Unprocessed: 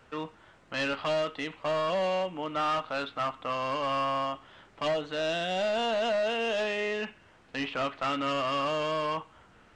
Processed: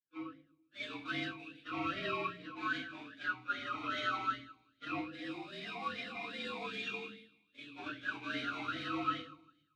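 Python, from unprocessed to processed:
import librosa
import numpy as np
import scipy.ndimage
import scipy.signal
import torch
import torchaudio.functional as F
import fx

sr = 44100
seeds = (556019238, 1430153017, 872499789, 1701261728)

y = fx.partial_stretch(x, sr, pct=113)
y = fx.fixed_phaser(y, sr, hz=1300.0, stages=8)
y = fx.echo_wet_highpass(y, sr, ms=156, feedback_pct=62, hz=2200.0, wet_db=-4)
y = fx.power_curve(y, sr, exponent=2.0)
y = fx.room_shoebox(y, sr, seeds[0], volume_m3=61.0, walls='mixed', distance_m=2.4)
y = fx.vowel_sweep(y, sr, vowels='i-u', hz=2.5)
y = y * 10.0 ** (8.0 / 20.0)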